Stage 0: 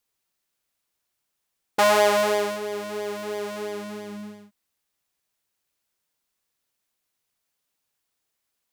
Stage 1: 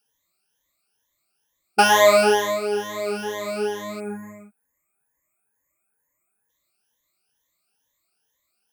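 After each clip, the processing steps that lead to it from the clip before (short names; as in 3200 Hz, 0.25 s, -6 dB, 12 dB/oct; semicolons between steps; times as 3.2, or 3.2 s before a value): moving spectral ripple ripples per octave 1.1, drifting +2.2 Hz, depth 21 dB; spectral delete 4–6.5, 2600–6500 Hz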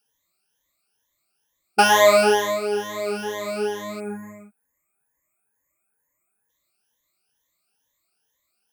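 nothing audible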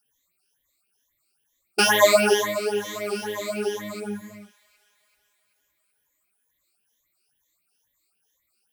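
phaser stages 4, 3.7 Hz, lowest notch 110–1200 Hz; thin delay 0.384 s, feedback 54%, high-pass 1600 Hz, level -20 dB; gain +2 dB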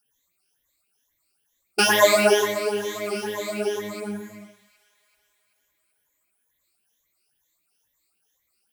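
reverb RT60 0.35 s, pre-delay 97 ms, DRR 8 dB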